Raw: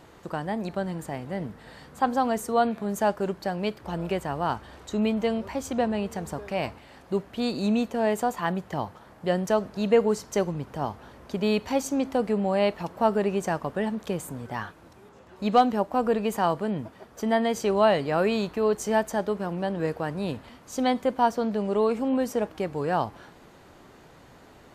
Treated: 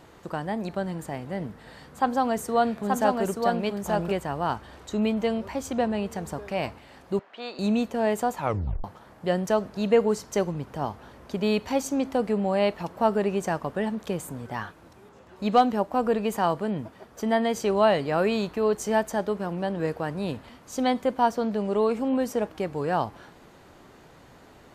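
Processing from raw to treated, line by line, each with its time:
1.50–4.12 s: delay 880 ms -3 dB
7.19–7.59 s: band-pass 650–3200 Hz
8.35 s: tape stop 0.49 s

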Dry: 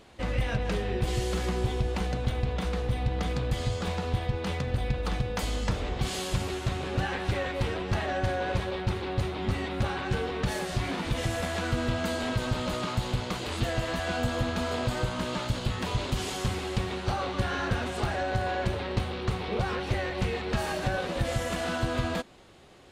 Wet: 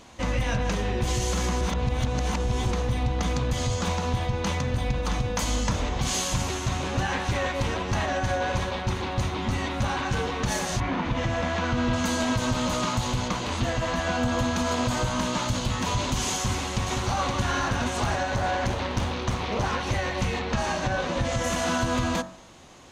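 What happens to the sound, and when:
1.61–2.71 s: reverse
10.79–11.92 s: low-pass 2.2 kHz -> 4.3 kHz
13.28–14.39 s: low-pass 3.8 kHz 6 dB/octave
16.34–17.16 s: echo throw 520 ms, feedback 50%, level -7 dB
18.36–19.72 s: loudspeaker Doppler distortion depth 0.78 ms
20.39–21.44 s: distance through air 65 m
whole clip: de-hum 46.76 Hz, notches 40; peak limiter -21.5 dBFS; graphic EQ with 31 bands 250 Hz +4 dB, 400 Hz -6 dB, 1 kHz +6 dB, 6.3 kHz +11 dB; trim +4.5 dB

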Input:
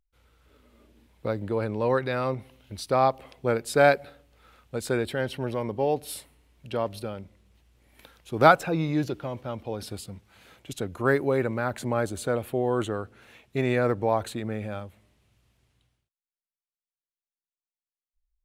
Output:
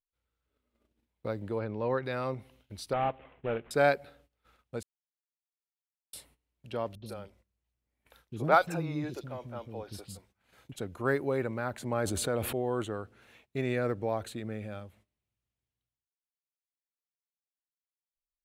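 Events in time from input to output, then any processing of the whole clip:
1.59–2.04 s: distance through air 130 m
2.93–3.71 s: CVSD coder 16 kbps
4.83–6.13 s: mute
6.95–10.76 s: three bands offset in time lows, mids, highs 70/110 ms, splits 330/3400 Hz
11.92–12.53 s: level flattener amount 70%
13.57–14.85 s: peaking EQ 930 Hz -5.5 dB 0.63 oct
whole clip: gate -55 dBFS, range -17 dB; trim -6 dB

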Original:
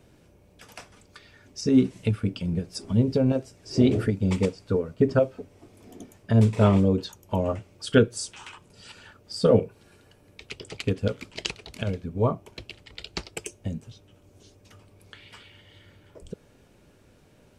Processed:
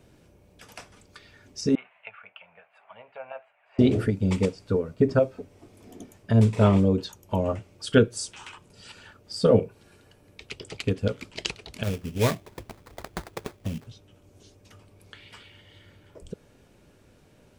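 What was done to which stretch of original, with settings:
1.75–3.79 s: elliptic band-pass 690–2600 Hz
4.96–5.39 s: band-stop 3 kHz
11.83–13.87 s: sample-rate reducer 2.9 kHz, jitter 20%

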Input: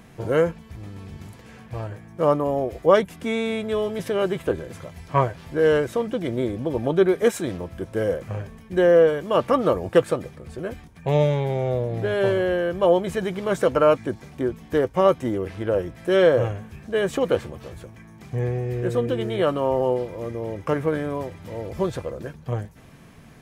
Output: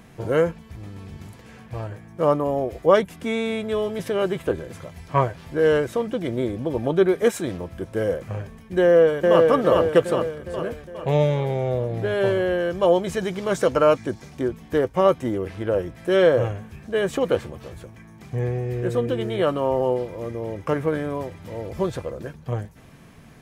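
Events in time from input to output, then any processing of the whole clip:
8.82–9.48 s: echo throw 410 ms, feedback 55%, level -1.5 dB
12.60–14.48 s: peaking EQ 5.8 kHz +6 dB 1.1 oct

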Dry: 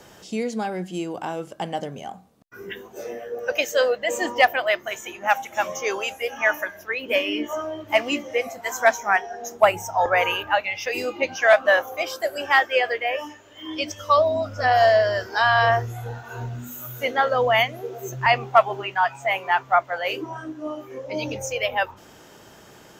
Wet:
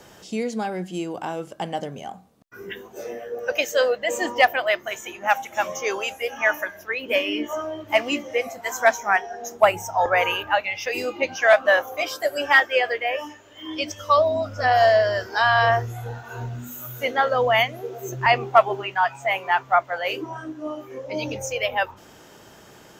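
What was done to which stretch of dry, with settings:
11.97–12.60 s: comb 6.9 ms
18.08–18.76 s: peaking EQ 360 Hz +7 dB 0.68 oct

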